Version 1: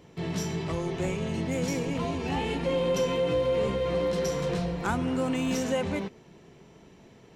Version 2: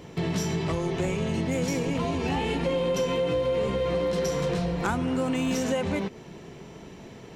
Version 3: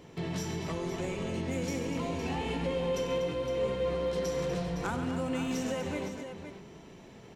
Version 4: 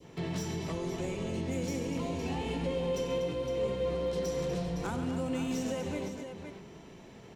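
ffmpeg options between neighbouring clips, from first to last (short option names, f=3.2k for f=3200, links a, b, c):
-af "acompressor=threshold=-35dB:ratio=3,volume=9dB"
-filter_complex "[0:a]bandreject=f=50:t=h:w=6,bandreject=f=100:t=h:w=6,bandreject=f=150:t=h:w=6,bandreject=f=200:t=h:w=6,asplit=2[a][b];[b]aecho=0:1:94|138|244|512:0.224|0.237|0.282|0.316[c];[a][c]amix=inputs=2:normalize=0,volume=-7dB"
-filter_complex "[0:a]adynamicequalizer=threshold=0.00355:dfrequency=1500:dqfactor=0.78:tfrequency=1500:tqfactor=0.78:attack=5:release=100:ratio=0.375:range=2.5:mode=cutabove:tftype=bell,acrossover=split=270|1400|1600[a][b][c][d];[d]asoftclip=type=hard:threshold=-39dB[e];[a][b][c][e]amix=inputs=4:normalize=0"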